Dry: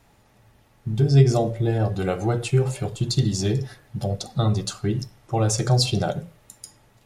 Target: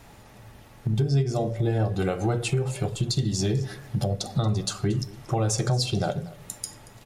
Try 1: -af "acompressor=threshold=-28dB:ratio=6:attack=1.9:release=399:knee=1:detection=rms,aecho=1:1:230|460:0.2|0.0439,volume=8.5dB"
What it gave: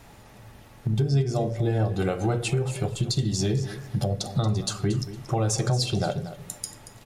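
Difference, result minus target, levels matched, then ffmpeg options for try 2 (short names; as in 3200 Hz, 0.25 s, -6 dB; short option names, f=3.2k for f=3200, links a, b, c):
echo-to-direct +6.5 dB
-af "acompressor=threshold=-28dB:ratio=6:attack=1.9:release=399:knee=1:detection=rms,aecho=1:1:230|460:0.0944|0.0208,volume=8.5dB"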